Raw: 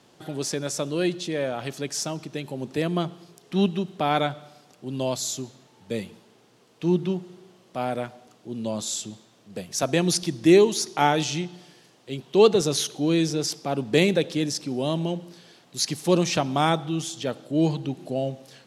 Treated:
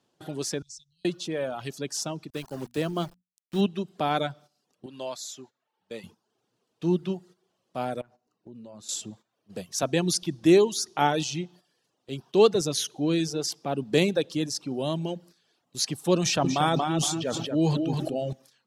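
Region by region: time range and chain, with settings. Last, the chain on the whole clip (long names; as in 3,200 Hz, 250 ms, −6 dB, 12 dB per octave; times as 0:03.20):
0:00.62–0:01.05: inverse Chebyshev band-stop filter 380–1,200 Hz, stop band 80 dB + high-frequency loss of the air 110 metres
0:02.30–0:03.61: centre clipping without the shift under −36.5 dBFS + mains-hum notches 60/120/180/240 Hz
0:04.86–0:06.04: high-pass filter 790 Hz 6 dB per octave + high-shelf EQ 4,400 Hz −9.5 dB
0:08.01–0:08.89: high-shelf EQ 3,000 Hz −10 dB + notch filter 3,300 Hz, Q 7.6 + downward compressor 5 to 1, threshold −39 dBFS
0:16.21–0:18.33: notch filter 2,100 Hz, Q 24 + feedback echo with a low-pass in the loop 233 ms, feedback 21%, low-pass 4,700 Hz, level −5.5 dB + level that may fall only so fast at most 23 dB per second
whole clip: reverb reduction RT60 0.67 s; noise gate −47 dBFS, range −13 dB; parametric band 2,100 Hz −4.5 dB 0.28 octaves; level −2 dB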